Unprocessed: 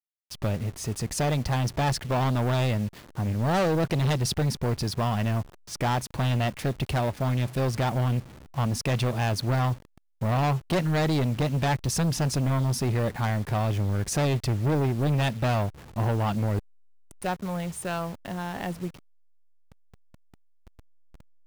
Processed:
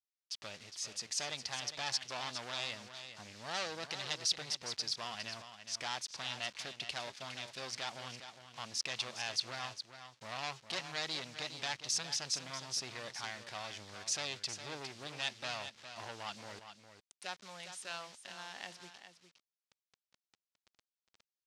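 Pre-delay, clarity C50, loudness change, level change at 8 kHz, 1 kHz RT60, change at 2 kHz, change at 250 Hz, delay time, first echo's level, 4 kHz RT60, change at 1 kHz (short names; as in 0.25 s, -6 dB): none, none, -12.5 dB, -3.5 dB, none, -7.5 dB, -26.0 dB, 0.409 s, -10.0 dB, none, -14.5 dB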